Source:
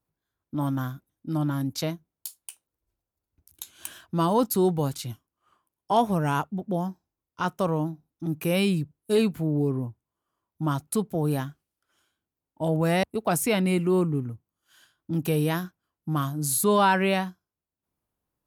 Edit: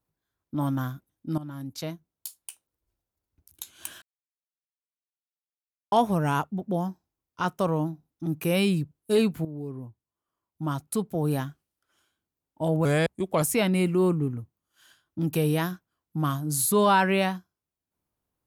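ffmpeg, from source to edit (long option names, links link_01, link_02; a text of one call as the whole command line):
ffmpeg -i in.wav -filter_complex "[0:a]asplit=7[link_01][link_02][link_03][link_04][link_05][link_06][link_07];[link_01]atrim=end=1.38,asetpts=PTS-STARTPTS,afade=type=out:start_time=1.376:duration=0.004:curve=hsin:silence=0.177828[link_08];[link_02]atrim=start=1.38:end=4.02,asetpts=PTS-STARTPTS,afade=type=in:duration=1.03:silence=0.177828,afade=type=out:start_time=2.636:duration=0.004:curve=hsin[link_09];[link_03]atrim=start=4.02:end=5.92,asetpts=PTS-STARTPTS,volume=0[link_10];[link_04]atrim=start=5.92:end=9.45,asetpts=PTS-STARTPTS,afade=type=in:duration=0.004:curve=hsin,afade=type=out:start_time=3.526:duration=0.004:curve=hsin:silence=0.211349[link_11];[link_05]atrim=start=9.45:end=12.854,asetpts=PTS-STARTPTS,afade=type=in:duration=1.99:silence=0.211349[link_12];[link_06]atrim=start=12.85:end=13.34,asetpts=PTS-STARTPTS,asetrate=37926,aresample=44100[link_13];[link_07]atrim=start=13.336[link_14];[link_08][link_09][link_10][link_11][link_12]concat=n=5:v=0:a=1[link_15];[link_15][link_13]acrossfade=duration=0.004:curve1=hsin:curve2=hsin[link_16];[link_16][link_14]acrossfade=duration=0.004:curve1=hsin:curve2=hsin" out.wav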